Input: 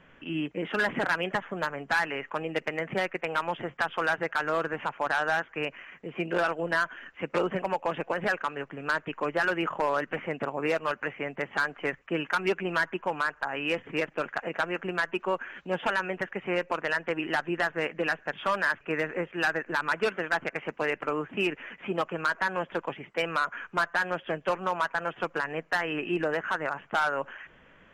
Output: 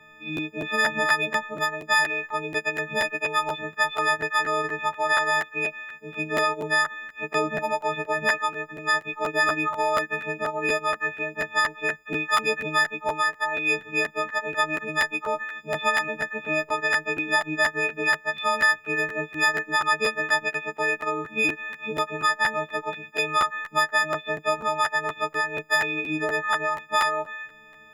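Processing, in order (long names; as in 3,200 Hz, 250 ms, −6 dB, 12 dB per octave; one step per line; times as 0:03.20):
every partial snapped to a pitch grid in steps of 6 semitones
harmonic and percussive parts rebalanced percussive −6 dB
regular buffer underruns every 0.24 s, samples 512, repeat, from 0:00.36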